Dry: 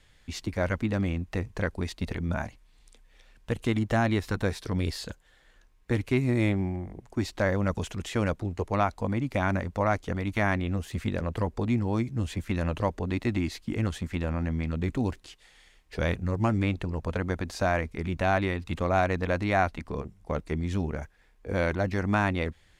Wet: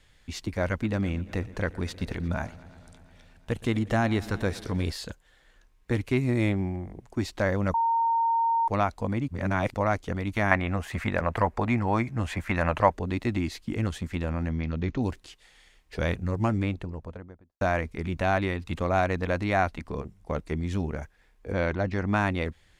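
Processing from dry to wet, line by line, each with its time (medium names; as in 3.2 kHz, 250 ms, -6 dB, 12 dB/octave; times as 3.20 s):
0.70–4.92 s: modulated delay 117 ms, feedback 78%, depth 79 cents, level -20 dB
7.74–8.68 s: bleep 919 Hz -21 dBFS
9.28–9.74 s: reverse
10.51–12.93 s: high-order bell 1.2 kHz +10 dB 2.3 oct
14.51–15.02 s: steep low-pass 6.5 kHz 72 dB/octave
16.38–17.61 s: studio fade out
21.52–22.15 s: distance through air 74 m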